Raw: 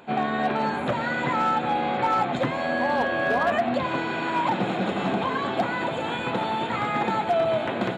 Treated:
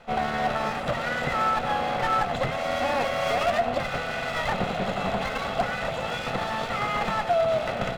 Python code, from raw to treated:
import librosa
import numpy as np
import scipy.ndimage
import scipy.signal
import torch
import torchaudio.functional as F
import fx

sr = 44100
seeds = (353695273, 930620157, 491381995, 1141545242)

y = fx.lower_of_two(x, sr, delay_ms=1.5)